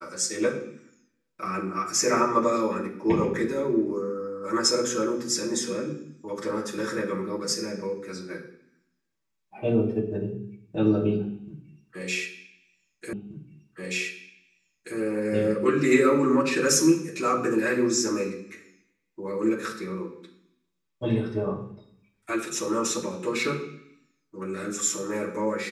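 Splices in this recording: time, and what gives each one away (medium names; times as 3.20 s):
13.13 s: repeat of the last 1.83 s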